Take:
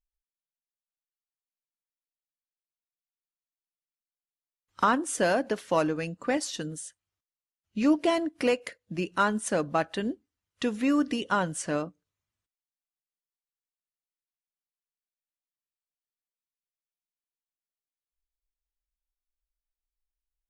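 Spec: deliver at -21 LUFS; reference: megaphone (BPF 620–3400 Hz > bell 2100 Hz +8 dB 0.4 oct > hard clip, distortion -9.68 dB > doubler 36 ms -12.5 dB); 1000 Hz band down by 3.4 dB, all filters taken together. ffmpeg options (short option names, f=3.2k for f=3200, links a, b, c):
-filter_complex "[0:a]highpass=620,lowpass=3.4k,equalizer=f=1k:t=o:g=-4,equalizer=f=2.1k:t=o:w=0.4:g=8,asoftclip=type=hard:threshold=-25.5dB,asplit=2[a][b];[b]adelay=36,volume=-12.5dB[c];[a][c]amix=inputs=2:normalize=0,volume=13.5dB"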